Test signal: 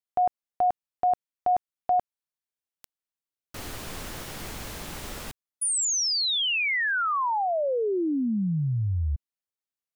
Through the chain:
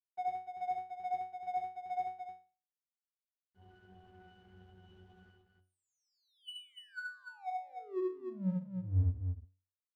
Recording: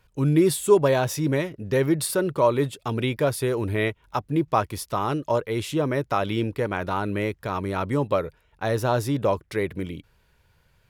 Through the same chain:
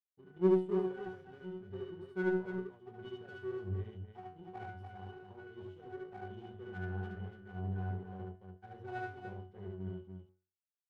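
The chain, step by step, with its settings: expander -44 dBFS; octave resonator F#, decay 0.48 s; power-law curve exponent 1.4; on a send: loudspeakers at several distances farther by 25 m -1 dB, 100 m -6 dB; on the sum: gain +2.5 dB

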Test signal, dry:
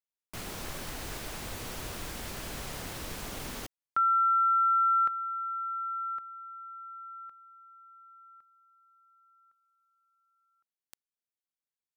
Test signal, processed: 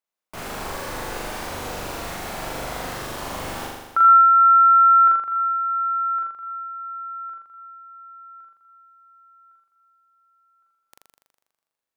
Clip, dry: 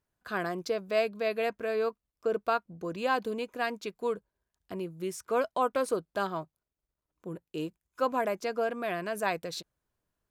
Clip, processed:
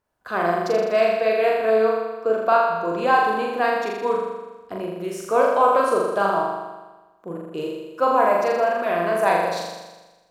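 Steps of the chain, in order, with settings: bell 810 Hz +9.5 dB 2.5 oct; flutter echo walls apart 7 m, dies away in 1.2 s

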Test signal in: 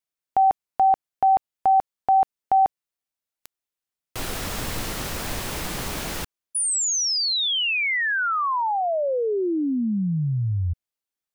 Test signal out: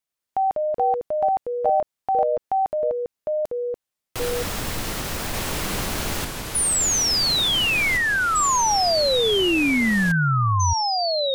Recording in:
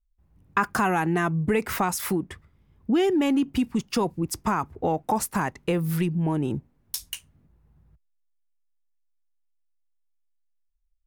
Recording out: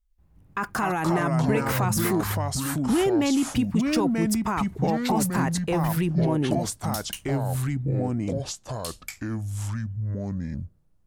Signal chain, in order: limiter -19 dBFS; echoes that change speed 0.101 s, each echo -4 st, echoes 2; gain +2 dB

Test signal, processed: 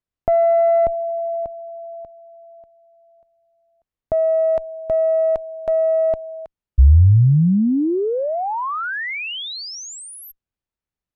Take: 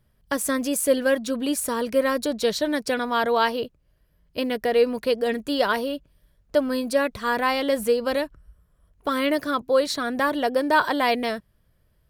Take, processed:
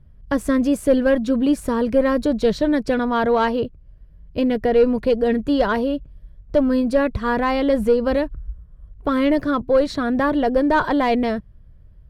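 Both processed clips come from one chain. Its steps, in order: added harmonics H 5 -22 dB, 6 -27 dB, 7 -38 dB, 8 -32 dB, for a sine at -8 dBFS; RIAA curve playback

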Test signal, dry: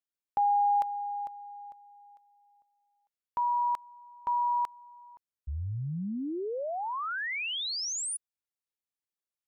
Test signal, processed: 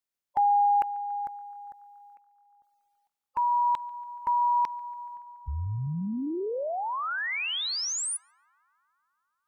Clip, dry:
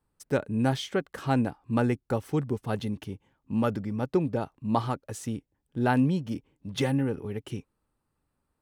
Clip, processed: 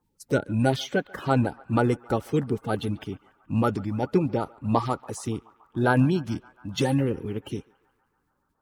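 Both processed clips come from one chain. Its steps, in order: bin magnitudes rounded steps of 30 dB; on a send: narrowing echo 0.142 s, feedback 81%, band-pass 1200 Hz, level -22 dB; on the sum: gain +3.5 dB

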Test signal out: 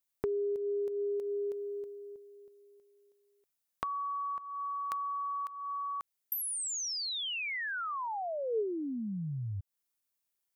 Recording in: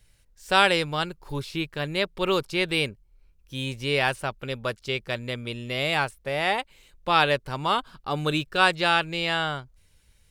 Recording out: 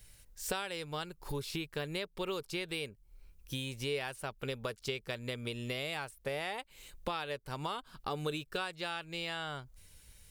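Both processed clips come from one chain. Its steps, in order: high shelf 7300 Hz +10 dB; compressor 16:1, threshold -36 dBFS; dynamic EQ 440 Hz, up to +7 dB, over -55 dBFS, Q 6; gain +1.5 dB

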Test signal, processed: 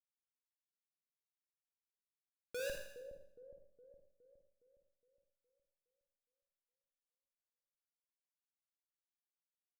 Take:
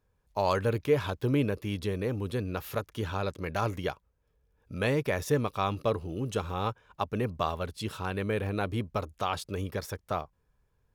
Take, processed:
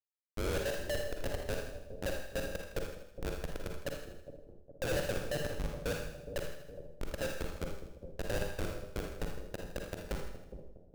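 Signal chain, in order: band inversion scrambler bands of 1000 Hz; LPF 3900 Hz 12 dB/oct; treble ducked by the level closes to 560 Hz, closed at -29 dBFS; vowel filter e; Schmitt trigger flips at -35.5 dBFS; split-band echo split 660 Hz, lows 0.414 s, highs 80 ms, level -9.5 dB; Schroeder reverb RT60 0.6 s, DRR 2 dB; gain +10.5 dB

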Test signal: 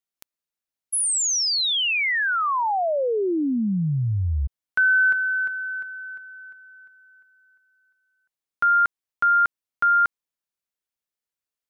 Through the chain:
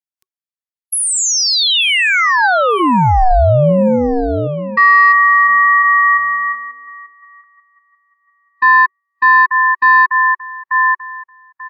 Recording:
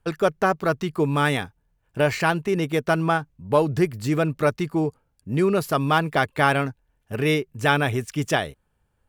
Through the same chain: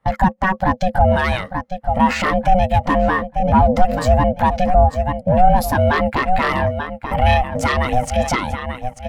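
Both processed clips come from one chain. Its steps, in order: dynamic EQ 880 Hz, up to -5 dB, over -36 dBFS, Q 1.4; in parallel at 0 dB: compressor, threshold -29 dBFS; on the sum: HPF 210 Hz 12 dB/oct; notch 750 Hz, Q 22; on a send: feedback echo 0.888 s, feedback 29%, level -15 dB; on the sum: ring modulator 370 Hz; sine folder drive 11 dB, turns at -2 dBFS; maximiser +12 dB; spectral expander 1.5:1; gain -1 dB

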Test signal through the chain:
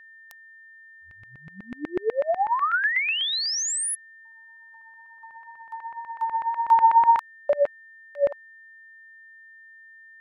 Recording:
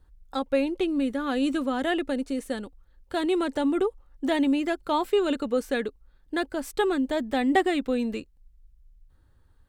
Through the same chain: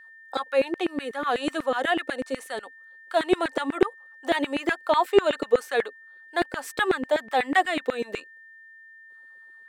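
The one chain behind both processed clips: LFO high-pass saw down 8.1 Hz 360–2000 Hz; wow and flutter 20 cents; whine 1800 Hz -48 dBFS; gain +1.5 dB

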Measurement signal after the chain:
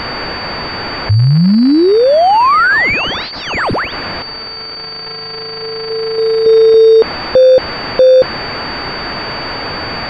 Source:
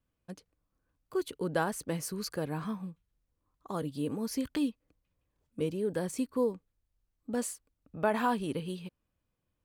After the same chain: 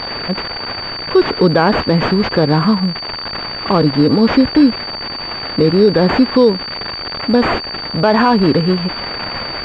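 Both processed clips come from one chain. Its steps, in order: switching spikes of -33.5 dBFS; maximiser +24.5 dB; pulse-width modulation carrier 4600 Hz; gain -1 dB

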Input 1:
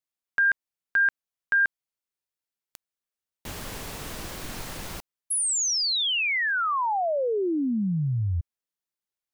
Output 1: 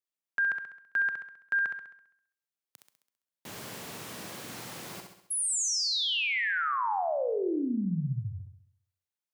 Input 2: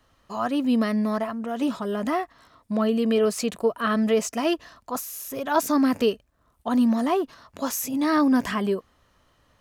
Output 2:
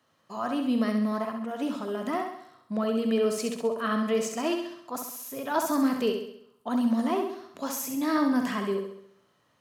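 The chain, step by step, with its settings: HPF 120 Hz 24 dB/oct; on a send: flutter echo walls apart 11.4 m, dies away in 0.69 s; on the sum: Schroeder reverb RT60 0.46 s, combs from 29 ms, DRR 14.5 dB; gain -5.5 dB

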